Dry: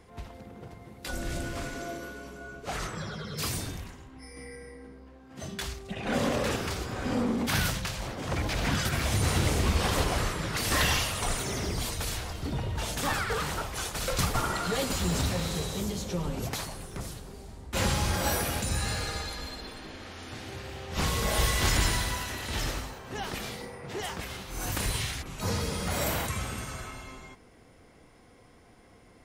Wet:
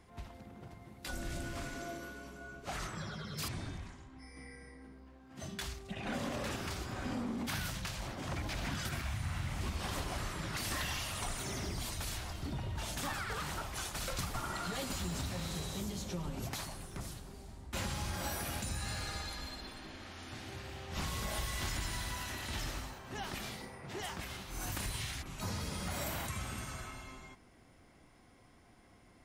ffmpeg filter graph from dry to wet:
ffmpeg -i in.wav -filter_complex "[0:a]asettb=1/sr,asplit=3[link_01][link_02][link_03];[link_01]atrim=end=3.484[link_04];[link_02]atrim=start=3.48:end=4.82,asetpts=PTS-STARTPTS,afade=type=in:duration=0.004:curve=qsin,afade=type=out:start_time=1.336:duration=0.004:curve=qsin,lowpass=frequency=9500:width=0.5412,lowpass=frequency=9500:width=1.3066,bandreject=frequency=2800:width=14,acrossover=split=3600[link_05][link_06];[link_06]acompressor=threshold=-54dB:ratio=4:attack=1:release=60[link_07];[link_05][link_07]amix=inputs=2:normalize=0[link_08];[link_03]atrim=start=4.816[link_09];[link_04][link_08]acrossfade=duration=0.004:curve1=hsin:curve2=qsin[link_10];[link_10][link_09]acrossfade=duration=0.004:curve1=qsin:curve2=hsin,asettb=1/sr,asplit=3[link_11][link_12][link_13];[link_11]atrim=end=9.014[link_14];[link_12]atrim=start=9.01:end=9.61,asetpts=PTS-STARTPTS,afade=type=in:duration=0.004:curve=qsin,afade=type=out:start_time=0.596:duration=0.004:curve=qsin,asplit=2[link_15][link_16];[link_16]adelay=45,volume=-3dB[link_17];[link_15][link_17]amix=inputs=2:normalize=0,atrim=end_sample=26460,acrossover=split=2700[link_18][link_19];[link_19]acompressor=threshold=-41dB:ratio=4:attack=1:release=60[link_20];[link_18][link_20]amix=inputs=2:normalize=0,equalizer=frequency=400:width_type=o:width=1.2:gain=-14.5[link_21];[link_13]atrim=start=9.606[link_22];[link_14][link_21]acrossfade=duration=0.004:curve1=hsin:curve2=qsin[link_23];[link_23][link_22]acrossfade=duration=0.004:curve1=qsin:curve2=hsin,equalizer=frequency=470:width=5.5:gain=-9,acompressor=threshold=-30dB:ratio=4,volume=-5dB" out.wav

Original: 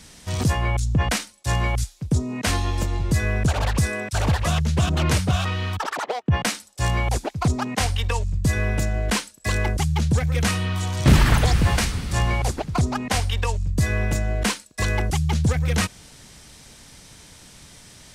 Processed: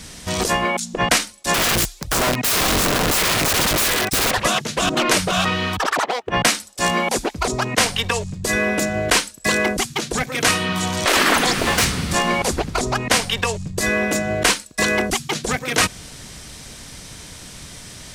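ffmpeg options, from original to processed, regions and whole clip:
ffmpeg -i in.wav -filter_complex "[0:a]asettb=1/sr,asplit=3[link_01][link_02][link_03];[link_01]atrim=end=1.544[link_04];[link_02]atrim=start=1.54:end=4.31,asetpts=PTS-STARTPTS,afade=type=in:duration=0.004:curve=qsin,afade=type=out:start_time=2.766:duration=0.004:curve=qsin,aphaser=in_gain=1:out_gain=1:delay=3:decay=0.56:speed=1.4:type=triangular,aeval=exprs='(mod(12.6*val(0)+1,2)-1)/12.6':channel_layout=same[link_05];[link_03]atrim=start=4.306[link_06];[link_04][link_05]acrossfade=duration=0.004:curve1=hsin:curve2=qsin[link_07];[link_07][link_06]acrossfade=duration=0.004:curve1=qsin:curve2=hsin,asettb=1/sr,asplit=3[link_08][link_09][link_10];[link_08]atrim=end=11.594[link_11];[link_09]atrim=start=11.59:end=12.15,asetpts=PTS-STARTPTS,afade=type=in:duration=0.004:curve=qsin,afade=type=out:start_time=0.556:duration=0.004:curve=qsin,highpass=100,asplit=2[link_12][link_13];[link_13]adelay=25,volume=-13dB[link_14];[link_12][link_14]amix=inputs=2:normalize=0,atrim=end_sample=24696,aeval=exprs='0.119*(abs(mod(val(0)/0.119+3,4)-2)-1)':channel_layout=same[link_15];[link_10]atrim=start=12.146[link_16];[link_11][link_15]acrossfade=duration=0.004:curve1=hsin:curve2=qsin[link_17];[link_17][link_16]acrossfade=duration=0.004:curve1=qsin:curve2=hsin,afftfilt=real='re*lt(hypot(re,im),0.355)':imag='im*lt(hypot(re,im),0.355)':win_size=1024:overlap=0.75,bandreject=frequency=860:width=17,volume=8.5dB" out.wav

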